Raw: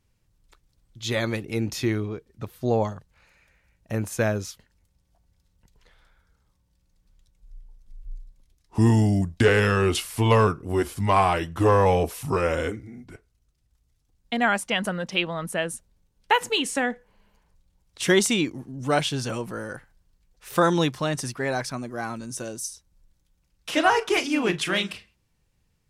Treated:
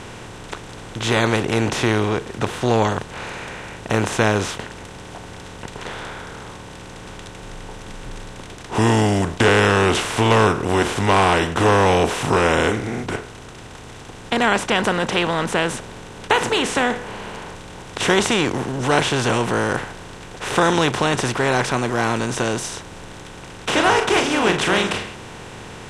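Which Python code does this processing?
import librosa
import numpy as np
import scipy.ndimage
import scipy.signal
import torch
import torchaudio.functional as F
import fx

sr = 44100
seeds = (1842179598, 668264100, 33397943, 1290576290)

y = fx.bin_compress(x, sr, power=0.4)
y = scipy.signal.sosfilt(scipy.signal.butter(2, 8500.0, 'lowpass', fs=sr, output='sos'), y)
y = y * librosa.db_to_amplitude(-1.5)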